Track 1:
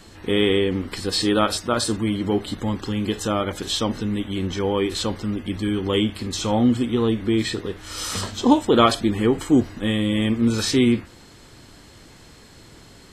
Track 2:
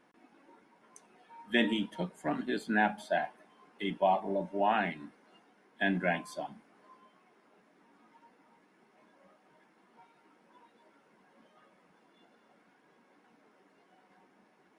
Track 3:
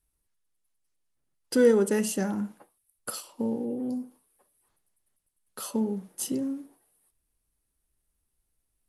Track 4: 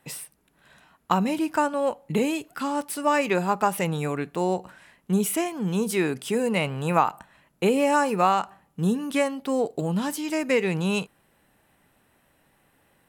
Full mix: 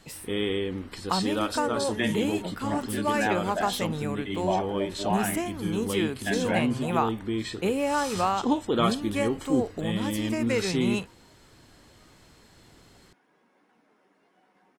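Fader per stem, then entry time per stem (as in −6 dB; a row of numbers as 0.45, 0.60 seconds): −9.0, −0.5, −14.0, −5.0 decibels; 0.00, 0.45, 0.00, 0.00 seconds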